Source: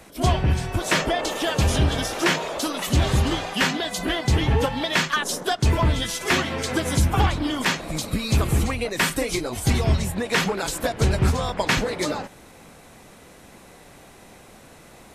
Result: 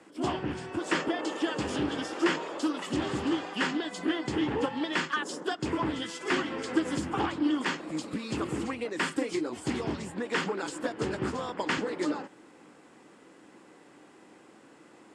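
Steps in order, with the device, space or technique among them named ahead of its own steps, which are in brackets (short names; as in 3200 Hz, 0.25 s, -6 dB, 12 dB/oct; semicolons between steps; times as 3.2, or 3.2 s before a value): full-range speaker at full volume (Doppler distortion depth 0.32 ms; speaker cabinet 230–7600 Hz, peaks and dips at 310 Hz +9 dB, 660 Hz -7 dB, 2300 Hz -5 dB, 3900 Hz -9 dB, 6000 Hz -9 dB); gain -6 dB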